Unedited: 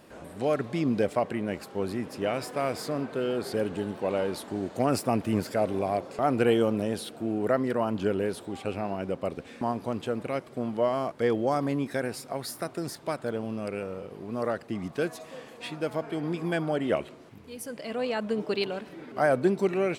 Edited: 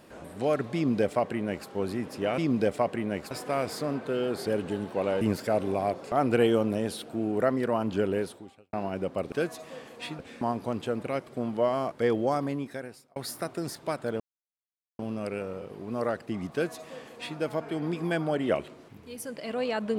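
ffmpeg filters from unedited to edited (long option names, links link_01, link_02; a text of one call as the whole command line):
ffmpeg -i in.wav -filter_complex "[0:a]asplit=9[link_01][link_02][link_03][link_04][link_05][link_06][link_07][link_08][link_09];[link_01]atrim=end=2.382[link_10];[link_02]atrim=start=0.748:end=1.682[link_11];[link_03]atrim=start=2.378:end=4.282[link_12];[link_04]atrim=start=5.278:end=8.8,asetpts=PTS-STARTPTS,afade=type=out:start_time=3.002:duration=0.52:curve=qua[link_13];[link_05]atrim=start=8.8:end=9.392,asetpts=PTS-STARTPTS,afade=type=in:duration=0.004:curve=hsin[link_14];[link_06]atrim=start=14.928:end=15.802[link_15];[link_07]atrim=start=9.388:end=12.36,asetpts=PTS-STARTPTS,afade=type=out:start_time=2.062:duration=0.91[link_16];[link_08]atrim=start=12.36:end=13.4,asetpts=PTS-STARTPTS,afade=type=in:duration=0.004:curve=hsin,afade=type=out:start_time=1.036:duration=0.004:curve=hsin,apad=pad_dur=0.79[link_17];[link_09]atrim=start=13.4,asetpts=PTS-STARTPTS,afade=type=in:duration=0.004:curve=hsin[link_18];[link_10][link_11]acrossfade=duration=0.004:curve1=hsin:curve2=hsin[link_19];[link_19][link_12]acrossfade=duration=0.004:curve1=hsin:curve2=hsin[link_20];[link_13][link_14]concat=n=2:v=0:a=1[link_21];[link_20][link_21]acrossfade=duration=0.004:curve1=hsin:curve2=hsin[link_22];[link_22][link_15]acrossfade=duration=0.004:curve1=hsin:curve2=hsin[link_23];[link_16][link_17][link_18]concat=n=3:v=0:a=1[link_24];[link_23][link_24]acrossfade=duration=0.004:curve1=hsin:curve2=hsin" out.wav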